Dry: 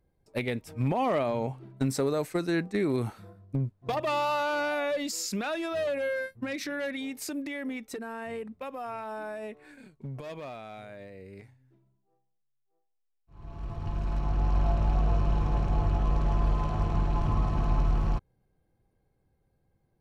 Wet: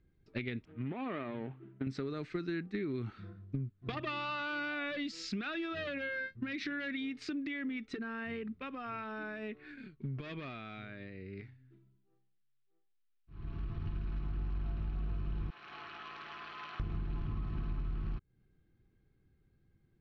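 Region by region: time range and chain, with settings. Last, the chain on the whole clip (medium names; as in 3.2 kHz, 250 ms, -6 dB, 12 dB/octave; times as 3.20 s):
0.65–1.87 s: median filter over 25 samples + high-pass 400 Hz 6 dB/octave + distance through air 460 m
15.50–16.80 s: high-pass 1.1 kHz + treble shelf 8.2 kHz -3 dB
whole clip: low-pass 4.1 kHz 24 dB/octave; high-order bell 700 Hz -12.5 dB 1.3 oct; compression 5:1, threshold -37 dBFS; trim +2 dB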